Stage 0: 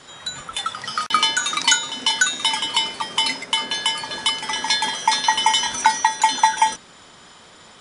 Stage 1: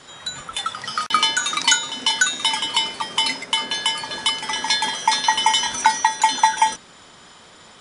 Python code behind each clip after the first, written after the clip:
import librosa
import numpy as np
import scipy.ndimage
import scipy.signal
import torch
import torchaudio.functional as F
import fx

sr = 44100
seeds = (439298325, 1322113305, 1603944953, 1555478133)

y = x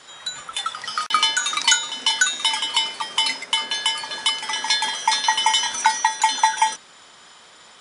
y = fx.low_shelf(x, sr, hz=370.0, db=-12.0)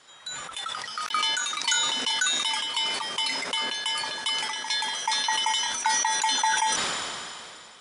y = fx.sustainer(x, sr, db_per_s=24.0)
y = F.gain(torch.from_numpy(y), -9.0).numpy()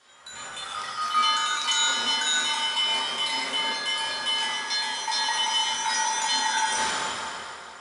y = fx.rev_fdn(x, sr, rt60_s=2.4, lf_ratio=0.7, hf_ratio=0.5, size_ms=76.0, drr_db=-6.5)
y = F.gain(torch.from_numpy(y), -6.0).numpy()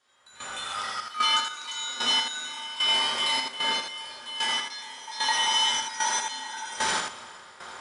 y = fx.step_gate(x, sr, bpm=75, pattern='..xxx.x...x.', floor_db=-12.0, edge_ms=4.5)
y = y + 10.0 ** (-4.5 / 20.0) * np.pad(y, (int(80 * sr / 1000.0), 0))[:len(y)]